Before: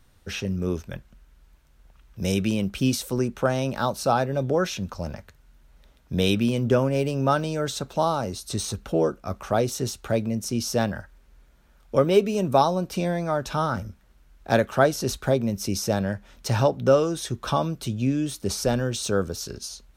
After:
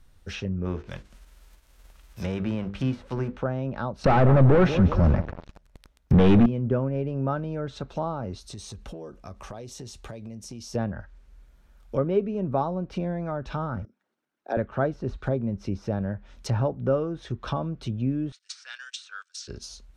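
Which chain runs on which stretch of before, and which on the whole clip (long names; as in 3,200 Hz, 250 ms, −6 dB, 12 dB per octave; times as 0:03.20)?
0:00.64–0:03.37: spectral envelope flattened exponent 0.6 + mains-hum notches 50/100/150/200/250/300/350/400/450/500 Hz
0:04.04–0:06.46: repeating echo 185 ms, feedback 45%, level −17 dB + leveller curve on the samples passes 5
0:08.48–0:10.75: notch filter 1,400 Hz, Q 6.5 + downward compressor, threshold −33 dBFS
0:13.85–0:14.57: spectral envelope exaggerated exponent 1.5 + high-pass filter 280 Hz 24 dB per octave
0:18.32–0:19.48: elliptic band-pass filter 1,500–8,600 Hz, stop band 80 dB + spectral tilt +2 dB per octave + noise gate −41 dBFS, range −18 dB
whole clip: dynamic equaliser 790 Hz, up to −4 dB, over −29 dBFS, Q 0.73; treble cut that deepens with the level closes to 1,400 Hz, closed at −23 dBFS; low-shelf EQ 67 Hz +9.5 dB; level −3.5 dB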